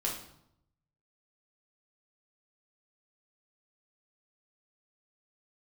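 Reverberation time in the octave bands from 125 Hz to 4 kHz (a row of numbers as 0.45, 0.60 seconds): 1.2, 0.90, 0.75, 0.75, 0.60, 0.60 seconds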